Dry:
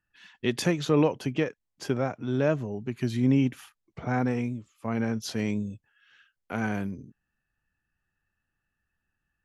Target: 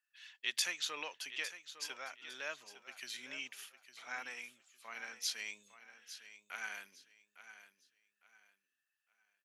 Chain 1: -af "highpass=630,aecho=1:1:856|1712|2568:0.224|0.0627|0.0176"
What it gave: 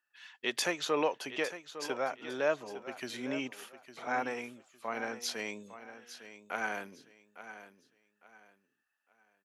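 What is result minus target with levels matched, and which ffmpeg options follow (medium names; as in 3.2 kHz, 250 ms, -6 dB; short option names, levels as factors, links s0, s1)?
500 Hz band +13.5 dB
-af "highpass=2200,aecho=1:1:856|1712|2568:0.224|0.0627|0.0176"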